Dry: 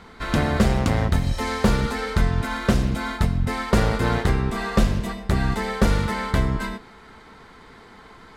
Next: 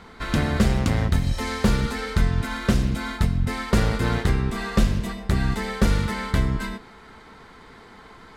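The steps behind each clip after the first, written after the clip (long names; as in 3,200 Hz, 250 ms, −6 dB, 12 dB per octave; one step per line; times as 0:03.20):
dynamic equaliser 730 Hz, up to −5 dB, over −35 dBFS, Q 0.75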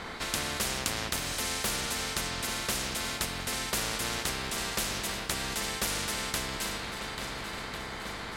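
feedback echo with a long and a short gap by turns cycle 1,398 ms, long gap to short 1.5 to 1, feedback 44%, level −15 dB
every bin compressed towards the loudest bin 4 to 1
level −1 dB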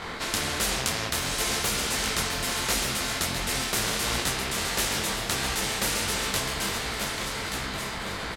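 single-tap delay 1,179 ms −7.5 dB
micro pitch shift up and down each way 50 cents
level +8 dB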